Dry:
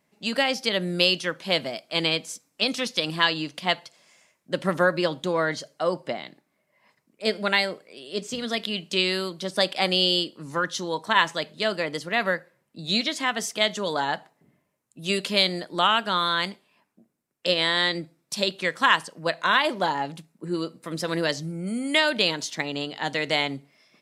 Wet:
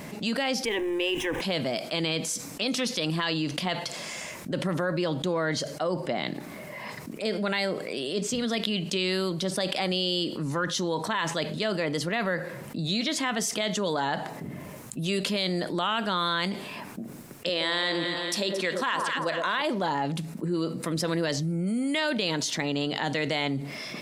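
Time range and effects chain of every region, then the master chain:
0.65–1.41 zero-crossing step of -31 dBFS + LPF 3500 Hz 6 dB/oct + fixed phaser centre 900 Hz, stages 8
17.49–19.62 HPF 240 Hz + echo with dull and thin repeats by turns 0.112 s, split 1200 Hz, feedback 69%, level -9 dB
whole clip: low shelf 410 Hz +6 dB; limiter -13.5 dBFS; fast leveller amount 70%; gain -5.5 dB

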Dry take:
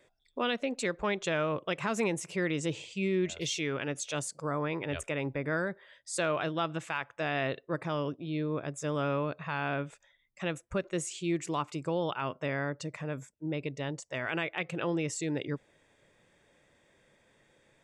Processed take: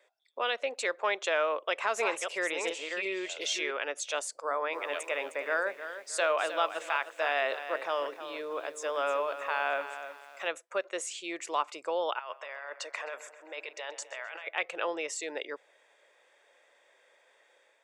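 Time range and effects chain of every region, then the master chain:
1.62–3.71 reverse delay 0.358 s, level -5 dB + HPF 61 Hz
4.4–10.48 notches 60/120/180/240/300/360/420/480/540 Hz + lo-fi delay 0.309 s, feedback 35%, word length 9-bit, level -10.5 dB
12.19–14.47 HPF 670 Hz + negative-ratio compressor -43 dBFS + darkening echo 0.13 s, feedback 71%, low-pass 4300 Hz, level -13.5 dB
whole clip: HPF 500 Hz 24 dB/oct; high shelf 6100 Hz -6 dB; AGC gain up to 4 dB

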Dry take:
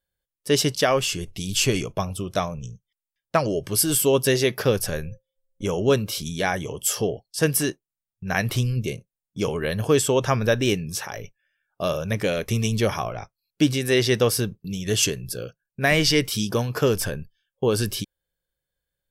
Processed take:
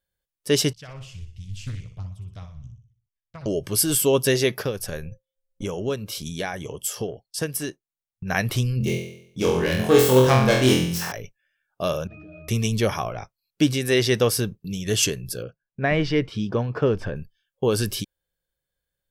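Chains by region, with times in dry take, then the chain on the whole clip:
0.73–3.46 EQ curve 100 Hz 0 dB, 300 Hz -30 dB, 2200 Hz -20 dB, 6400 Hz -22 dB, 13000 Hz -29 dB + feedback echo 61 ms, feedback 46%, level -8.5 dB + Doppler distortion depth 0.63 ms
4.58–8.24 transient shaper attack +5 dB, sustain -5 dB + compressor 2:1, threshold -29 dBFS
8.78–11.12 self-modulated delay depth 0.12 ms + flutter echo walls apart 4 m, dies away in 0.66 s
12.07–12.48 delta modulation 32 kbps, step -30 dBFS + octave resonator D#, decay 0.69 s + fast leveller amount 100%
15.42–17.16 LPF 3500 Hz + high shelf 2300 Hz -10.5 dB
whole clip: dry

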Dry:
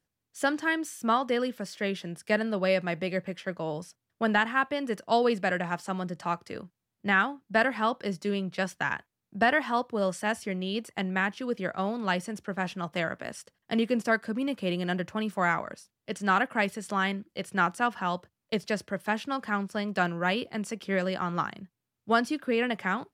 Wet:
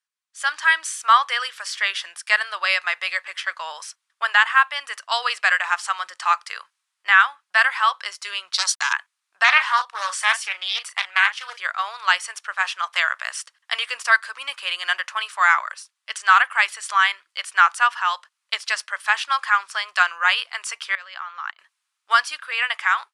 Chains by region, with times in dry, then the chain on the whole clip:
8.53–8.93 resonant high shelf 3300 Hz +9 dB, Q 3 + sample gate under -51.5 dBFS + core saturation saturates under 1800 Hz
9.44–11.57 HPF 430 Hz + doubler 36 ms -10 dB + Doppler distortion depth 0.23 ms
20.95–21.59 LPF 4500 Hz + level quantiser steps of 22 dB
whole clip: elliptic band-pass 1100–9800 Hz, stop band 60 dB; AGC gain up to 16.5 dB; gain -1 dB

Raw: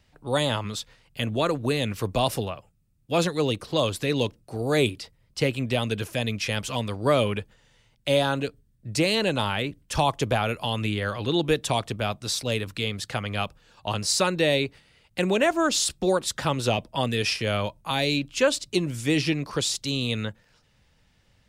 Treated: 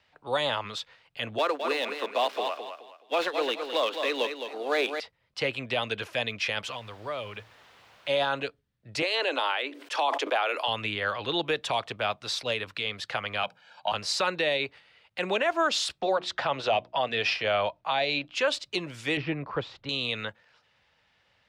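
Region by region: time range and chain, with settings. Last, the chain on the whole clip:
1.38–5 switching dead time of 0.065 ms + steep high-pass 250 Hz + feedback echo 0.212 s, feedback 30%, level -8 dB
6.7–8.08 bell 110 Hz +10 dB 0.23 oct + compressor 2.5:1, threshold -35 dBFS + added noise pink -54 dBFS
9.02–10.68 steep high-pass 260 Hz 96 dB/oct + sustainer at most 74 dB/s
13.43–13.92 HPF 150 Hz 24 dB/oct + notches 60/120/180/240/300/360/420/480 Hz + comb 1.3 ms, depth 93%
16.01–18.35 LPF 5500 Hz + bell 690 Hz +7 dB 0.45 oct + notches 60/120/180/240/300/360 Hz
19.17–19.89 LPF 1600 Hz + low shelf 160 Hz +11.5 dB
whole clip: HPF 60 Hz; three-band isolator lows -15 dB, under 510 Hz, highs -18 dB, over 4500 Hz; limiter -19 dBFS; gain +2.5 dB

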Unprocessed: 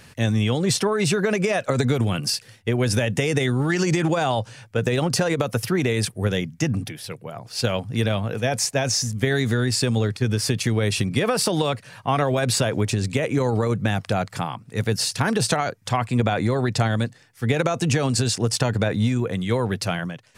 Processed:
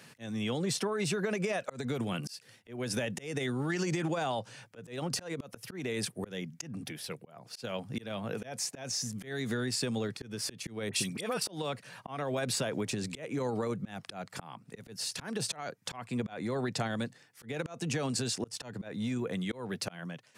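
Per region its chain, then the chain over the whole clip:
10.89–11.43 high shelf 4400 Hz +10.5 dB + auto swell 0.199 s + dispersion highs, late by 45 ms, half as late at 1600 Hz
whole clip: HPF 140 Hz 24 dB/oct; auto swell 0.316 s; compressor 2:1, threshold -27 dBFS; gain -5.5 dB

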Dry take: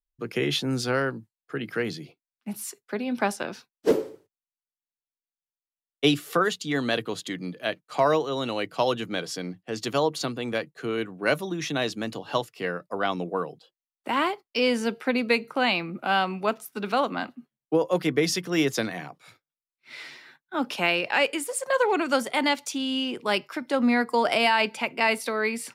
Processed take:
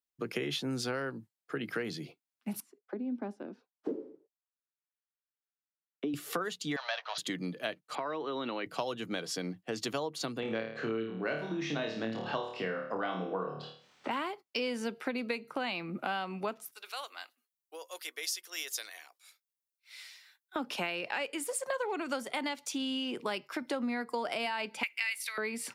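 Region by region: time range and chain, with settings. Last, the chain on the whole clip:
2.6–6.14 tilt +1.5 dB/oct + auto-wah 270–1500 Hz, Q 2.4, down, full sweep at -30 dBFS
6.76–7.18 power-law curve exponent 0.7 + Chebyshev band-pass 610–5900 Hz, order 5
7.95–8.66 compressor 3:1, threshold -25 dBFS + speaker cabinet 230–3600 Hz, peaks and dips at 490 Hz -5 dB, 710 Hz -6 dB, 2900 Hz -5 dB
10.4–14.11 upward compressor, threshold -30 dBFS + air absorption 160 m + flutter echo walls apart 4.6 m, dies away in 0.47 s
16.71–20.56 HPF 370 Hz 24 dB/oct + differentiator
24.83–25.38 resonant high-pass 2100 Hz, resonance Q 2.5 + high shelf 5100 Hz +12 dB
whole clip: HPF 120 Hz; compressor 6:1, threshold -32 dBFS

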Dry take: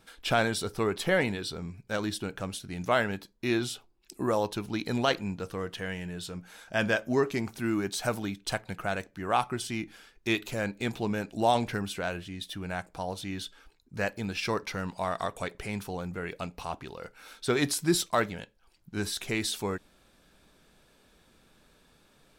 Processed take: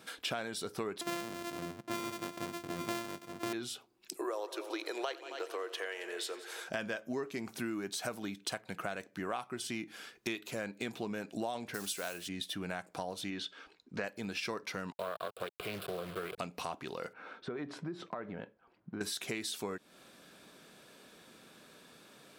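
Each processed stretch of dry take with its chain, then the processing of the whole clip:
1.01–3.53 sample sorter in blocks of 128 samples + echo 0.867 s -11 dB + mismatched tape noise reduction decoder only
4.16–6.68 elliptic high-pass 340 Hz + multi-head echo 90 ms, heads all three, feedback 41%, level -20.5 dB
11.74–12.29 block floating point 5-bit + tone controls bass -6 dB, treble +12 dB
13.3–14.04 LPF 4700 Hz + bell 120 Hz -7 dB 0.85 oct
14.92–16.38 level-crossing sampler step -38 dBFS + fixed phaser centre 1300 Hz, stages 8 + Doppler distortion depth 0.49 ms
17.13–19.01 LPF 1400 Hz + compressor 5:1, threshold -40 dBFS
whole clip: HPF 180 Hz 12 dB/oct; notch 860 Hz, Q 14; compressor 6:1, threshold -42 dBFS; gain +6 dB

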